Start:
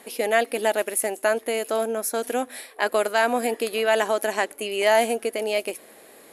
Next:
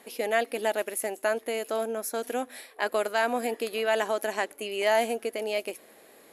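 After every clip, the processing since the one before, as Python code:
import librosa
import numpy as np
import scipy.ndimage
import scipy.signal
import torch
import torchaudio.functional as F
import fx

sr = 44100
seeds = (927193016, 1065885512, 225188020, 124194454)

y = fx.peak_eq(x, sr, hz=9300.0, db=-6.0, octaves=0.3)
y = y * 10.0 ** (-5.0 / 20.0)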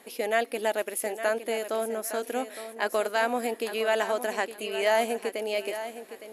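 y = fx.echo_feedback(x, sr, ms=862, feedback_pct=28, wet_db=-11.5)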